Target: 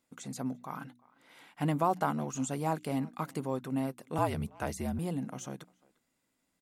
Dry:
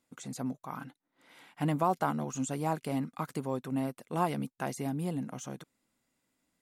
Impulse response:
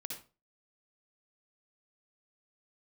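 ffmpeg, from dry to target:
-filter_complex "[0:a]bandreject=f=60.76:t=h:w=4,bandreject=f=121.52:t=h:w=4,bandreject=f=182.28:t=h:w=4,bandreject=f=243.04:t=h:w=4,bandreject=f=303.8:t=h:w=4,asplit=2[a][b];[b]adelay=350,highpass=300,lowpass=3.4k,asoftclip=type=hard:threshold=-23dB,volume=-24dB[c];[a][c]amix=inputs=2:normalize=0,asettb=1/sr,asplit=3[d][e][f];[d]atrim=end=4.184[g];[e]atrim=start=4.18:end=4.99,asetpts=PTS-STARTPTS,afade=t=in:d=0.004:c=qsin,afade=t=out:st=0.806:d=0.004:c=qsin,afreqshift=-54[h];[f]atrim=start=4.986[i];[g][h]acrossfade=d=0.004:c1=hsin:c2=qsin[j];[j][i]acrossfade=d=0.004:c1=qsin:c2=hsin"

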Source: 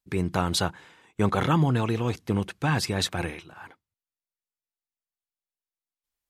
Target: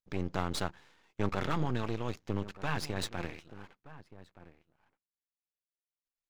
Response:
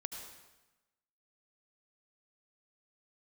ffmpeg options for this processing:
-filter_complex "[0:a]aresample=16000,aresample=44100,asplit=2[a][b];[b]adelay=1224,volume=-16dB,highshelf=f=4k:g=-27.6[c];[a][c]amix=inputs=2:normalize=0,aeval=exprs='max(val(0),0)':c=same,volume=-6dB"

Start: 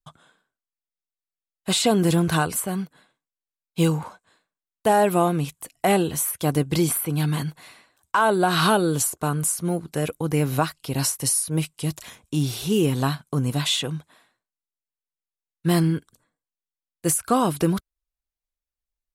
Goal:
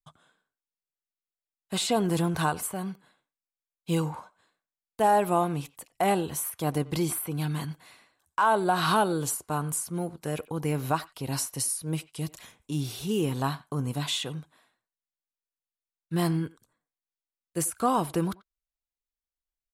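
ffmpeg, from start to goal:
-filter_complex "[0:a]atempo=0.97,asplit=2[a][b];[b]adelay=90,highpass=300,lowpass=3.4k,asoftclip=type=hard:threshold=-18dB,volume=-19dB[c];[a][c]amix=inputs=2:normalize=0,adynamicequalizer=threshold=0.02:dfrequency=920:dqfactor=1.7:tfrequency=920:tqfactor=1.7:attack=5:release=100:ratio=0.375:range=3:mode=boostabove:tftype=bell,volume=-7dB"

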